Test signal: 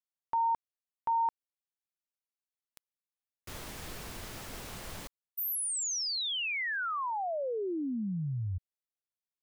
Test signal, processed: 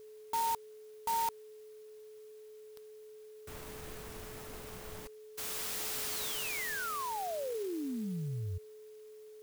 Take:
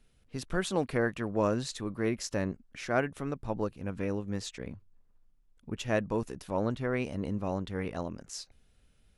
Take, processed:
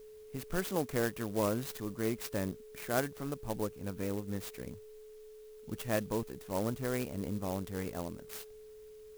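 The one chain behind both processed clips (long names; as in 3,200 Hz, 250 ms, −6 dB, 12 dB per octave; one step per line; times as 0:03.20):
steady tone 430 Hz −46 dBFS
converter with an unsteady clock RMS 0.063 ms
level −3.5 dB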